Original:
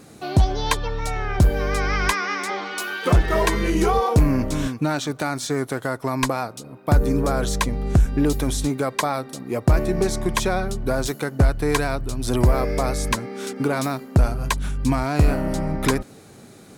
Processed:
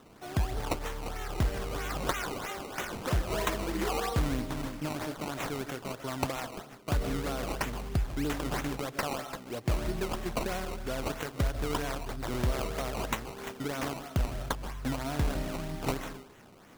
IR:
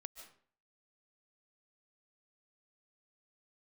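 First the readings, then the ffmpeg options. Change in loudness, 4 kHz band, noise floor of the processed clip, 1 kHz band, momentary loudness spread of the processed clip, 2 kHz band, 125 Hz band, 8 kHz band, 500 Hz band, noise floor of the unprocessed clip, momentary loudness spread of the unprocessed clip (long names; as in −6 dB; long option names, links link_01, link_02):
−11.5 dB, −8.5 dB, −52 dBFS, −10.5 dB, 6 LU, −10.5 dB, −12.5 dB, −11.0 dB, −11.5 dB, −45 dBFS, 7 LU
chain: -filter_complex "[0:a]aemphasis=mode=production:type=50fm[link_01];[1:a]atrim=start_sample=2205[link_02];[link_01][link_02]afir=irnorm=-1:irlink=0,acrusher=samples=18:mix=1:aa=0.000001:lfo=1:lforange=18:lforate=3.1,volume=-6.5dB"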